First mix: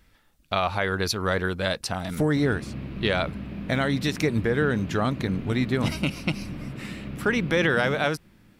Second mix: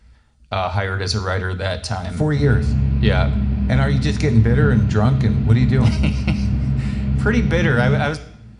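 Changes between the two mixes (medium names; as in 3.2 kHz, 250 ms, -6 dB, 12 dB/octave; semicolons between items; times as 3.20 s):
speech: add brick-wall FIR low-pass 10 kHz; reverb: on, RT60 0.70 s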